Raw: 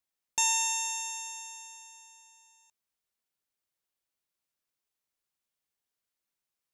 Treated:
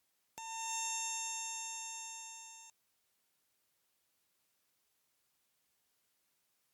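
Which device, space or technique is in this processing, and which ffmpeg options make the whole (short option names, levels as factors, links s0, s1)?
podcast mastering chain: -af "highpass=61,deesser=0.7,acompressor=threshold=0.00282:ratio=2.5,alimiter=level_in=3.55:limit=0.0631:level=0:latency=1:release=388,volume=0.282,volume=2.99" -ar 44100 -c:a libmp3lame -b:a 96k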